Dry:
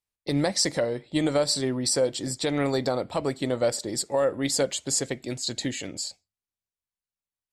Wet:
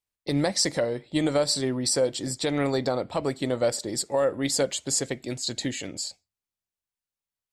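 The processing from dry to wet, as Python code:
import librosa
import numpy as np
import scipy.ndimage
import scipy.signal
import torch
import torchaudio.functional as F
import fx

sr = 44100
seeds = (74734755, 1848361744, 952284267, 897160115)

y = fx.high_shelf(x, sr, hz=11000.0, db=-10.0, at=(2.67, 3.23))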